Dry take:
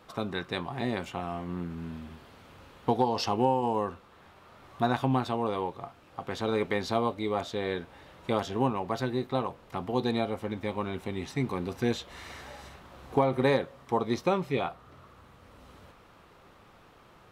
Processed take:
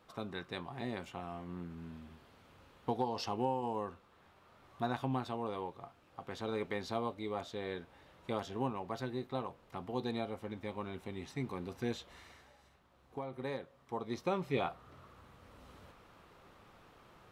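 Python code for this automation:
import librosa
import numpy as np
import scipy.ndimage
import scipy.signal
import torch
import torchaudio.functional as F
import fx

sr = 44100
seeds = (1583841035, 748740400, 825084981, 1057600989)

y = fx.gain(x, sr, db=fx.line((12.1, -9.0), (12.54, -18.5), (13.09, -18.5), (14.03, -11.5), (14.6, -4.0)))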